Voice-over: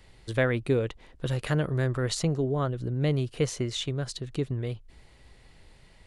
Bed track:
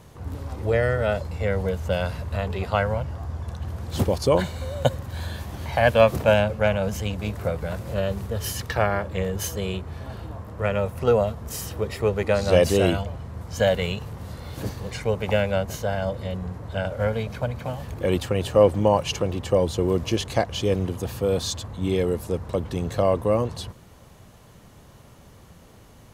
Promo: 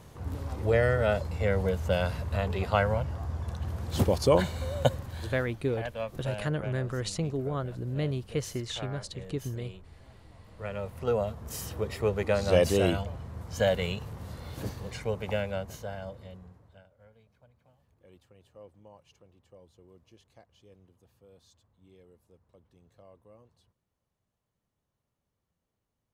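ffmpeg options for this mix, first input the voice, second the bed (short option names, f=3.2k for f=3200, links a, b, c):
-filter_complex "[0:a]adelay=4950,volume=-4.5dB[a];[1:a]volume=11.5dB,afade=t=out:st=4.76:d=0.87:silence=0.149624,afade=t=in:st=10.31:d=1.39:silence=0.199526,afade=t=out:st=14.52:d=2.35:silence=0.0334965[b];[a][b]amix=inputs=2:normalize=0"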